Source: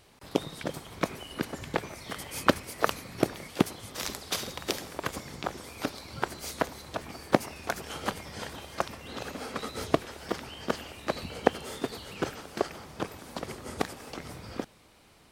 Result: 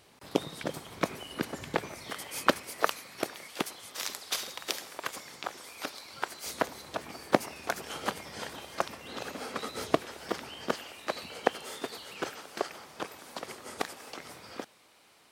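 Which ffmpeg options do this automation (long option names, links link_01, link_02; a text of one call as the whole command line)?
ffmpeg -i in.wav -af "asetnsamples=nb_out_samples=441:pad=0,asendcmd='2.1 highpass f 400;2.87 highpass f 940;6.46 highpass f 230;10.74 highpass f 590',highpass=frequency=130:poles=1" out.wav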